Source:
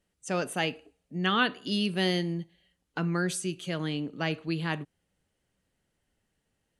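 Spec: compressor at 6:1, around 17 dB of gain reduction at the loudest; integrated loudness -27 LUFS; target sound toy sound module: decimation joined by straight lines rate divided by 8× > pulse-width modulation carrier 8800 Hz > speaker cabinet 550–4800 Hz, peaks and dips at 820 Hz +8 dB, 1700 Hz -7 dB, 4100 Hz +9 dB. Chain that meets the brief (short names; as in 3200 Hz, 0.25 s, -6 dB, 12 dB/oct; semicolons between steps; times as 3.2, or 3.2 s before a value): compressor 6:1, threshold -39 dBFS; decimation joined by straight lines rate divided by 8×; pulse-width modulation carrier 8800 Hz; speaker cabinet 550–4800 Hz, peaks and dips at 820 Hz +8 dB, 1700 Hz -7 dB, 4100 Hz +9 dB; gain +21.5 dB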